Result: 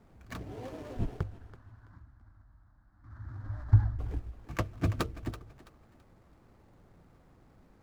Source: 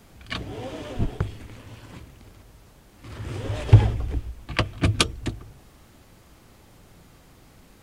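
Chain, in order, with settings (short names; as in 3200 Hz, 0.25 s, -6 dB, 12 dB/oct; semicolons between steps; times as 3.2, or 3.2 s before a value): median filter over 15 samples; 1.23–3.99 EQ curve 100 Hz 0 dB, 150 Hz -9 dB, 310 Hz -9 dB, 440 Hz -30 dB, 640 Hz -11 dB, 1100 Hz -4 dB, 1600 Hz 0 dB, 2600 Hz -25 dB, 4100 Hz -12 dB, 9500 Hz -22 dB; thinning echo 0.331 s, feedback 30%, high-pass 480 Hz, level -13 dB; gain -7.5 dB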